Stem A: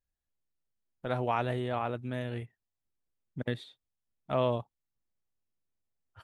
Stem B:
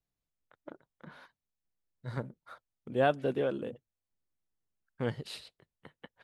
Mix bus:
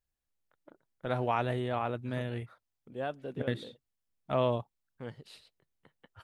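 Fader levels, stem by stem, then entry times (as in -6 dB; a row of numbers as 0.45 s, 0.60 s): 0.0 dB, -9.5 dB; 0.00 s, 0.00 s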